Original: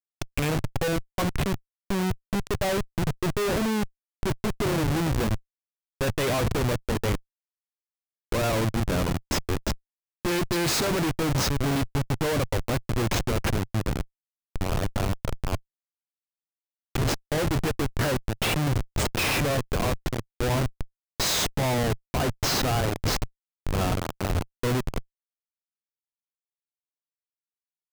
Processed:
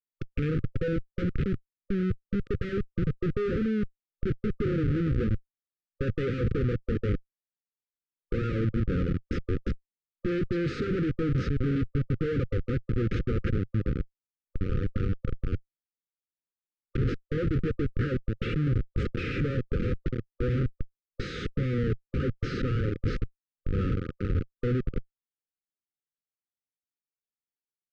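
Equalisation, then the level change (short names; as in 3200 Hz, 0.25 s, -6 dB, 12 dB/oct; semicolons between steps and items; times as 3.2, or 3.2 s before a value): brick-wall FIR band-stop 540–1200 Hz; tape spacing loss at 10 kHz 44 dB; 0.0 dB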